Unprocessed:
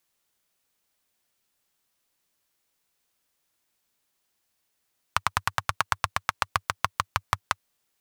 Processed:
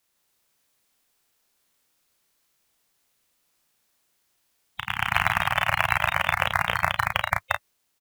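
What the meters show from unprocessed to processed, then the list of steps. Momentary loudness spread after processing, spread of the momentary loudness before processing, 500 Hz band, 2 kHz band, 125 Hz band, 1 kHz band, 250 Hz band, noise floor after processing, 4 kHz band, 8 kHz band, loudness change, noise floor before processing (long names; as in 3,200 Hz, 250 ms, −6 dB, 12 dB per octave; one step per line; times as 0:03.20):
8 LU, 4 LU, +8.5 dB, +8.5 dB, +5.5 dB, +3.5 dB, +7.0 dB, −73 dBFS, +4.5 dB, −3.0 dB, +5.0 dB, −76 dBFS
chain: spectral magnitudes quantised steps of 30 dB
delay with pitch and tempo change per echo 151 ms, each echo +1 semitone, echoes 3
ambience of single reflections 34 ms −4 dB, 51 ms −17 dB
level +1.5 dB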